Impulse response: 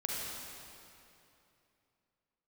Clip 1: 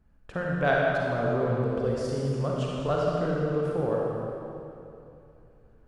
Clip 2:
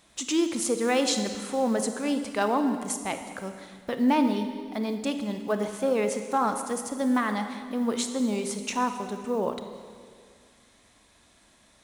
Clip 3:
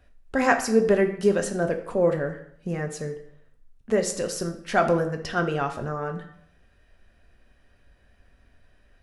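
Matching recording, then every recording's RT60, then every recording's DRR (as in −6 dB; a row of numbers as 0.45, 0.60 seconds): 1; 2.8, 2.0, 0.70 seconds; −4.0, 7.0, 4.5 decibels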